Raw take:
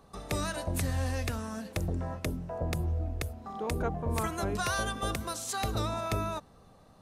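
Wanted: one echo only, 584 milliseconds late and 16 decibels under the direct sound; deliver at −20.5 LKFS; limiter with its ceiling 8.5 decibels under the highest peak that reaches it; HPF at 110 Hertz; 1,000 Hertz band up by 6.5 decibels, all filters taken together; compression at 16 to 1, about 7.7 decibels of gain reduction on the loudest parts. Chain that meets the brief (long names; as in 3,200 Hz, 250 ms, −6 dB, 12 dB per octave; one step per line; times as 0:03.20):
high-pass filter 110 Hz
parametric band 1,000 Hz +8.5 dB
downward compressor 16 to 1, threshold −31 dBFS
brickwall limiter −27 dBFS
single-tap delay 584 ms −16 dB
level +17 dB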